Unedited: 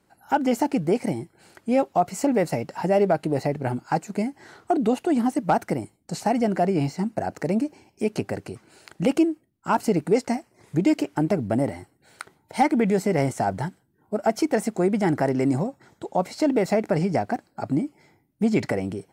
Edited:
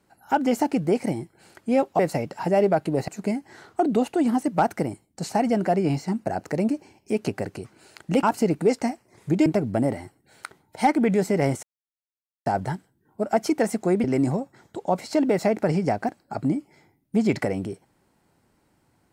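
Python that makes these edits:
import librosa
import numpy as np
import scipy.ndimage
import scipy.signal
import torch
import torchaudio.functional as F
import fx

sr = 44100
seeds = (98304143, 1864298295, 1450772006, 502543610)

y = fx.edit(x, sr, fx.cut(start_s=1.99, length_s=0.38),
    fx.cut(start_s=3.46, length_s=0.53),
    fx.cut(start_s=9.14, length_s=0.55),
    fx.cut(start_s=10.92, length_s=0.3),
    fx.insert_silence(at_s=13.39, length_s=0.83),
    fx.cut(start_s=14.97, length_s=0.34), tone=tone)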